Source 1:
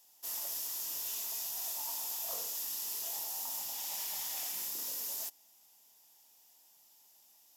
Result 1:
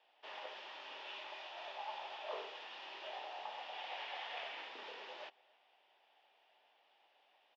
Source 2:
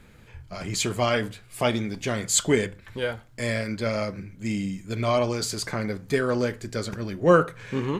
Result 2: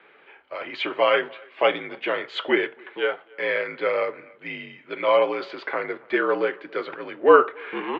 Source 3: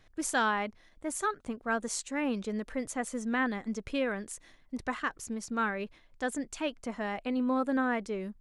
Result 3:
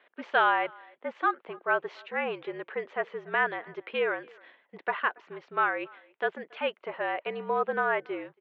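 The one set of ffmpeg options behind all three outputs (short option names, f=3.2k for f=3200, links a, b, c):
-filter_complex "[0:a]asplit=2[a][b];[b]adelay=280,highpass=300,lowpass=3.4k,asoftclip=type=hard:threshold=-15dB,volume=-26dB[c];[a][c]amix=inputs=2:normalize=0,highpass=f=450:t=q:w=0.5412,highpass=f=450:t=q:w=1.307,lowpass=f=3.2k:t=q:w=0.5176,lowpass=f=3.2k:t=q:w=0.7071,lowpass=f=3.2k:t=q:w=1.932,afreqshift=-55,volume=5.5dB"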